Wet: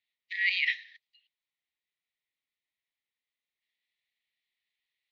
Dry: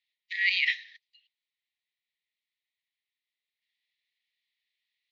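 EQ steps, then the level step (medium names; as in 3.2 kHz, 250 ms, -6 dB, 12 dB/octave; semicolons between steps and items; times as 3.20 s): low-pass 3.1 kHz 6 dB/octave; 0.0 dB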